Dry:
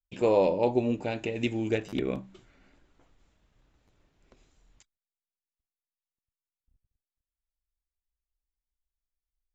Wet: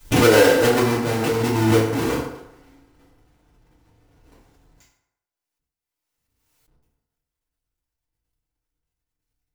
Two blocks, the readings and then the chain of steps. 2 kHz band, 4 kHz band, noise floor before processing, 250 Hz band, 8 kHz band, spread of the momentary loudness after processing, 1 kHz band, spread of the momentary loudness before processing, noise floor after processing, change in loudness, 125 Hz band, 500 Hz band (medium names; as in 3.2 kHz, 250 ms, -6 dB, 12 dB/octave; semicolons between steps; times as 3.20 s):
+17.0 dB, +16.5 dB, under -85 dBFS, +10.0 dB, no reading, 11 LU, +11.0 dB, 9 LU, under -85 dBFS, +10.0 dB, +14.0 dB, +9.0 dB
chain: square wave that keeps the level; FDN reverb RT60 0.86 s, low-frequency decay 0.75×, high-frequency decay 0.6×, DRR -9.5 dB; swell ahead of each attack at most 32 dB/s; trim -6 dB